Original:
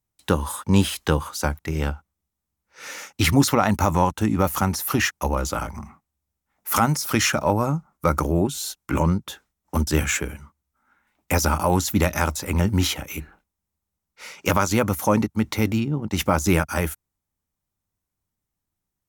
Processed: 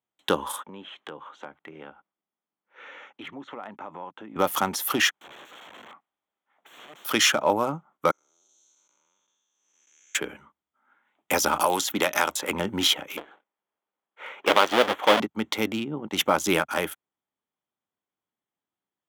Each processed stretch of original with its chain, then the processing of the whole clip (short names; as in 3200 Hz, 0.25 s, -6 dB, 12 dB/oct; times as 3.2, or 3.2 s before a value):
0.63–4.36 BPF 140–3100 Hz + compressor 2.5:1, threshold -41 dBFS
5.14–7.05 compressor, threshold -36 dBFS + overdrive pedal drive 12 dB, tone 2900 Hz, clips at -22.5 dBFS + wrapped overs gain 38 dB
8.11–10.15 time blur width 0.424 s + band-pass 6200 Hz, Q 12
11.6–12.51 low shelf 240 Hz -10 dB + three-band squash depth 100%
13.17–15.2 half-waves squared off + tone controls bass -14 dB, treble -14 dB
whole clip: Wiener smoothing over 9 samples; HPF 320 Hz 12 dB/oct; bell 3300 Hz +10.5 dB 0.29 oct